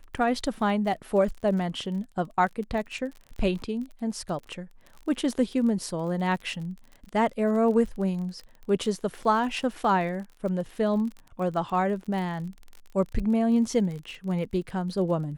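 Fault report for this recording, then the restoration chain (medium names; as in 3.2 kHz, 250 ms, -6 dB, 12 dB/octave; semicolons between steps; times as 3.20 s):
crackle 34 per s -35 dBFS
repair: de-click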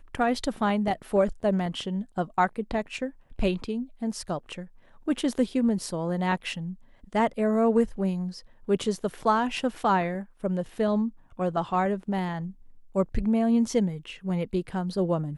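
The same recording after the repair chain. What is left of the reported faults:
nothing left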